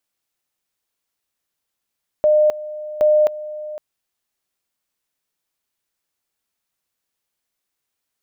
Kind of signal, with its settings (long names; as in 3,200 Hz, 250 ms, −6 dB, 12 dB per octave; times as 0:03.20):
tone at two levels in turn 607 Hz −10.5 dBFS, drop 16.5 dB, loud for 0.26 s, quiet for 0.51 s, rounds 2